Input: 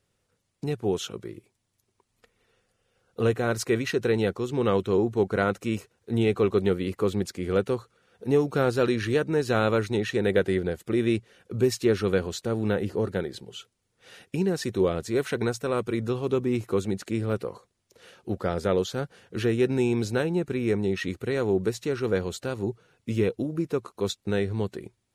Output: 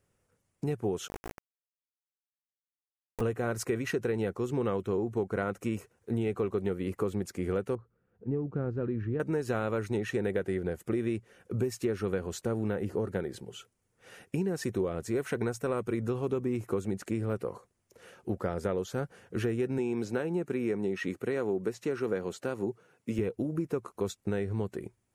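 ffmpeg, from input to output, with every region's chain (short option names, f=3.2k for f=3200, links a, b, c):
-filter_complex "[0:a]asettb=1/sr,asplit=3[a][b][c];[a]atrim=end=1.084[d];[b]atrim=start=1.08:end=3.21,asetpts=PTS-STARTPTS,afade=t=in:d=0.004:c=qsin,afade=t=out:st=2.126:d=0.004:c=qsin,highpass=f=290:p=1,bandreject=f=1.3k:w=6.1,acrusher=bits=3:dc=4:mix=0:aa=0.000001[e];[c]atrim=start=3.206[f];[d][e]acrossfade=d=0.004:c1=hsin:c2=qsin[g];[g][f]acrossfade=d=0.004:c1=qsin:c2=hsin,asettb=1/sr,asplit=3[h][i][j];[h]atrim=end=7.754[k];[i]atrim=start=7.75:end=9.2,asetpts=PTS-STARTPTS,afade=t=in:d=0.004:c=qsin,afade=t=out:st=1.446:d=0.004:c=qsin,lowpass=1k,equalizer=f=740:w=0.54:g=-12.5[l];[j]atrim=start=9.196[m];[k][l]acrossfade=d=0.004:c1=hsin:c2=qsin[n];[n][m]acrossfade=d=0.004:c1=qsin:c2=hsin,asettb=1/sr,asplit=3[o][p][q];[o]atrim=end=19.784[r];[p]atrim=start=19.78:end=23.19,asetpts=PTS-STARTPTS,afade=t=in:d=0.004:c=qsin,afade=t=out:st=3.406:d=0.004:c=qsin,acrossover=split=6200[s][t];[t]acompressor=threshold=-52dB:ratio=4:attack=1:release=60[u];[s][u]amix=inputs=2:normalize=0,highpass=170[v];[q]atrim=start=23.186[w];[r][v]acrossfade=d=0.004:c1=hsin:c2=qsin[x];[x][w]acrossfade=d=0.004:c1=qsin:c2=hsin,equalizer=f=3.9k:t=o:w=0.94:g=-10,acompressor=threshold=-27dB:ratio=6"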